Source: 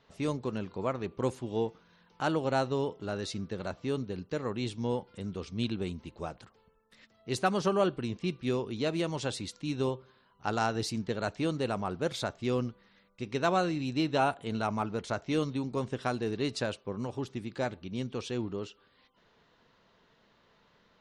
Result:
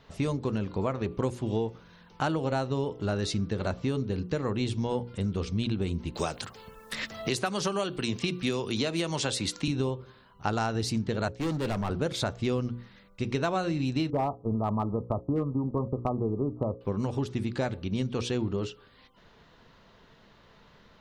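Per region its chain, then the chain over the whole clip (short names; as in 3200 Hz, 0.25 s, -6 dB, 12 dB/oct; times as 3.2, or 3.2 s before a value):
6.15–9.68 tilt +2 dB/oct + three-band squash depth 70%
11.28–11.9 HPF 55 Hz 6 dB/oct + overloaded stage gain 33 dB + three-band expander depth 100%
14.1–16.81 gate -42 dBFS, range -12 dB + brick-wall FIR low-pass 1300 Hz + hard clip -21.5 dBFS
whole clip: low shelf 140 Hz +9.5 dB; notches 60/120/180/240/300/360/420/480/540 Hz; compressor, threshold -32 dBFS; gain +7 dB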